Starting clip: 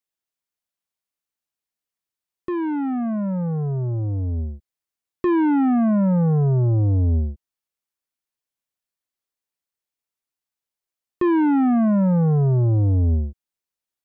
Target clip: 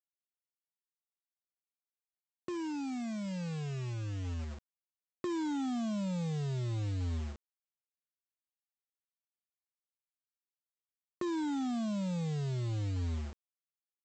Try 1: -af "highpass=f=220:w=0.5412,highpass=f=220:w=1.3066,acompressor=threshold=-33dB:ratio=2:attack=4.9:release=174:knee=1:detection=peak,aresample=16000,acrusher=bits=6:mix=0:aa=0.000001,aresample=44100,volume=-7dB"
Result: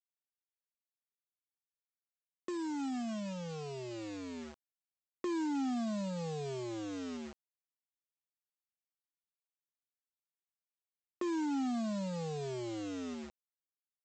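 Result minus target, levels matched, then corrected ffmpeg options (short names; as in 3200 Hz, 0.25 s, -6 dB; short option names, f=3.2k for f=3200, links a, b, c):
125 Hz band -9.0 dB
-af "highpass=f=71:w=0.5412,highpass=f=71:w=1.3066,acompressor=threshold=-33dB:ratio=2:attack=4.9:release=174:knee=1:detection=peak,aresample=16000,acrusher=bits=6:mix=0:aa=0.000001,aresample=44100,volume=-7dB"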